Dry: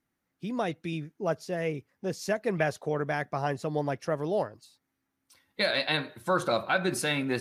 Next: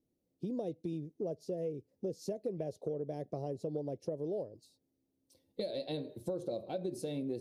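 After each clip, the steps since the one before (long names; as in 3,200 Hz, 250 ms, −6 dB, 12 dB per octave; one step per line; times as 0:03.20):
drawn EQ curve 220 Hz 0 dB, 330 Hz +4 dB, 520 Hz +5 dB, 1,400 Hz −30 dB, 4,200 Hz −8 dB
downward compressor 6 to 1, threshold −35 dBFS, peak gain reduction 14 dB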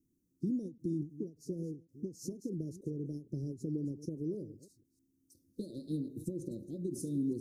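delay that plays each chunk backwards 156 ms, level −12.5 dB
elliptic band-stop filter 320–6,100 Hz, stop band 50 dB
every ending faded ahead of time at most 210 dB per second
level +5.5 dB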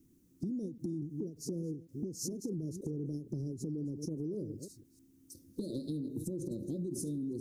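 brickwall limiter −34.5 dBFS, peak gain reduction 9 dB
downward compressor, threshold −47 dBFS, peak gain reduction 9.5 dB
level +12 dB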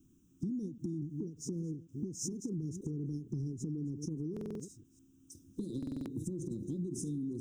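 phaser with its sweep stopped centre 3,000 Hz, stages 8
buffer that repeats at 0:04.32/0:05.78, samples 2,048, times 5
level +2 dB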